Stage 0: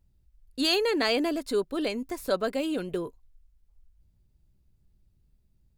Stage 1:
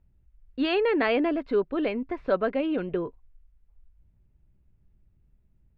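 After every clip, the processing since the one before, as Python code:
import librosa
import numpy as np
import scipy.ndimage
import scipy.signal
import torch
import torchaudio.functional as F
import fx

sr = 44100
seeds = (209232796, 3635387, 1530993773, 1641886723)

y = scipy.signal.sosfilt(scipy.signal.butter(4, 2600.0, 'lowpass', fs=sr, output='sos'), x)
y = y * librosa.db_to_amplitude(2.5)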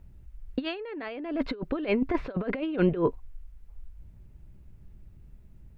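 y = fx.over_compress(x, sr, threshold_db=-32.0, ratio=-0.5)
y = y * librosa.db_to_amplitude(5.0)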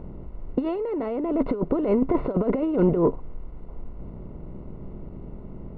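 y = fx.bin_compress(x, sr, power=0.6)
y = fx.leveller(y, sr, passes=1)
y = scipy.signal.savgol_filter(y, 65, 4, mode='constant')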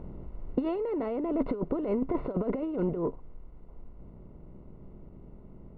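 y = fx.rider(x, sr, range_db=10, speed_s=0.5)
y = y * librosa.db_to_amplitude(-6.5)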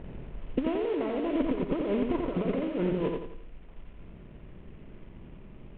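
y = fx.cvsd(x, sr, bps=16000)
y = fx.echo_feedback(y, sr, ms=87, feedback_pct=40, wet_db=-4.0)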